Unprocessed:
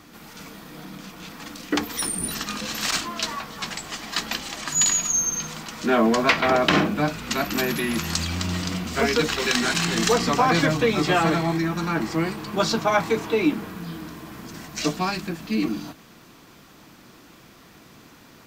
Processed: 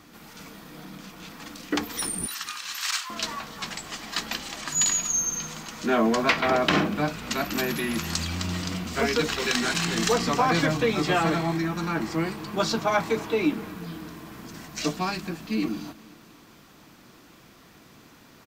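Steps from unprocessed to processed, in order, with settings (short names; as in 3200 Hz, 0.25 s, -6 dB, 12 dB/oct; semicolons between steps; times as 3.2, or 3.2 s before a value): 2.26–3.1 inverse Chebyshev high-pass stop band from 220 Hz, stop band 70 dB; feedback echo 0.242 s, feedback 53%, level -22.5 dB; gain -3 dB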